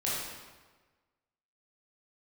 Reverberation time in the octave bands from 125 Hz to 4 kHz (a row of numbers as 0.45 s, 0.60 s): 1.4 s, 1.3 s, 1.4 s, 1.3 s, 1.2 s, 1.0 s